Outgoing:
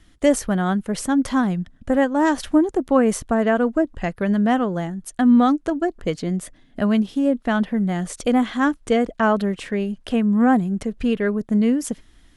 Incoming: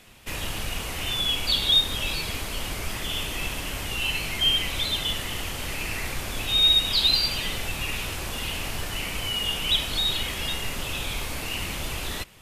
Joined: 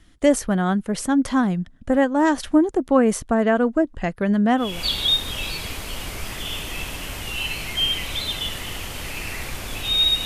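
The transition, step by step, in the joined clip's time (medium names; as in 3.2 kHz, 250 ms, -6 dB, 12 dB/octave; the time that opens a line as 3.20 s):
outgoing
4.70 s: go over to incoming from 1.34 s, crossfade 0.28 s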